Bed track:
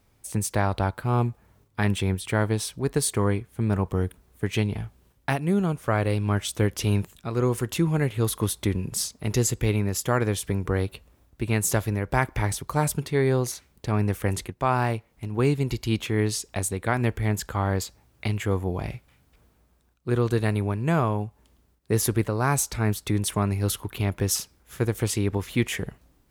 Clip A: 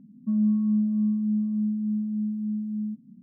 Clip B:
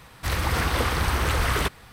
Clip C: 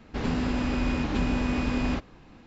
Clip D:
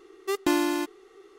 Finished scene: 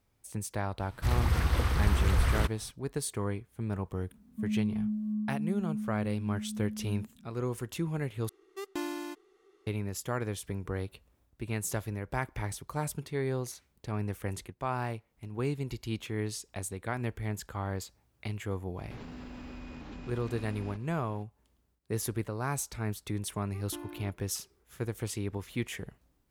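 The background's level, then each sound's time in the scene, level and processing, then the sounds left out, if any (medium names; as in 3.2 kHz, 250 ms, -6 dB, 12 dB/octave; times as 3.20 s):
bed track -10 dB
0.79 s: add B -10.5 dB + bass shelf 190 Hz +12 dB
4.11 s: add A -9 dB
8.29 s: replace with D -12 dB
18.77 s: add C -6.5 dB + compression 4:1, threshold -36 dBFS
23.26 s: add D -18 dB + tape spacing loss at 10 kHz 37 dB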